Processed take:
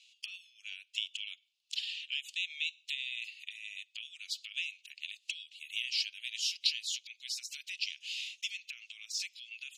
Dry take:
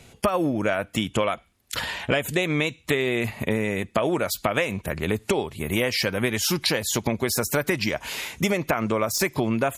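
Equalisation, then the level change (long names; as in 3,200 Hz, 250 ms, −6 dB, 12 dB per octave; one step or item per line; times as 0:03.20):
Chebyshev high-pass filter 2,700 Hz, order 5
high-frequency loss of the air 140 metres
0.0 dB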